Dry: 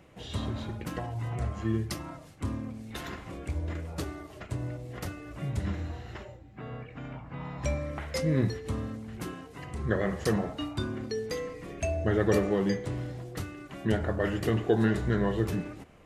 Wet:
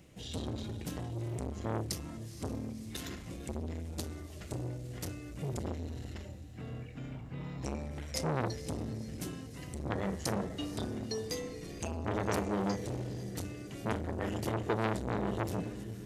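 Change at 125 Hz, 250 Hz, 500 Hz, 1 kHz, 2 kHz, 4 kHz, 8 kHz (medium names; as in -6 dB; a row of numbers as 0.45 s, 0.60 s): -5.5 dB, -6.0 dB, -6.5 dB, -1.0 dB, -6.5 dB, -1.5 dB, +1.5 dB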